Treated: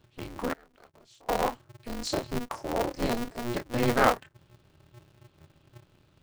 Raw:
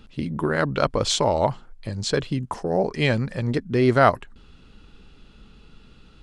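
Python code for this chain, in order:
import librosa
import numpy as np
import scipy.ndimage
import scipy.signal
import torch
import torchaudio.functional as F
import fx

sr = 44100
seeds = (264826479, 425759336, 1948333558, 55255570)

y = fx.chorus_voices(x, sr, voices=4, hz=0.65, base_ms=28, depth_ms=3.4, mix_pct=35)
y = fx.noise_reduce_blind(y, sr, reduce_db=8)
y = fx.gate_flip(y, sr, shuts_db=-25.0, range_db=-29, at=(0.53, 1.29))
y = fx.spec_box(y, sr, start_s=1.87, length_s=1.64, low_hz=1400.0, high_hz=4000.0, gain_db=-13)
y = y * np.sign(np.sin(2.0 * np.pi * 120.0 * np.arange(len(y)) / sr))
y = F.gain(torch.from_numpy(y), -3.0).numpy()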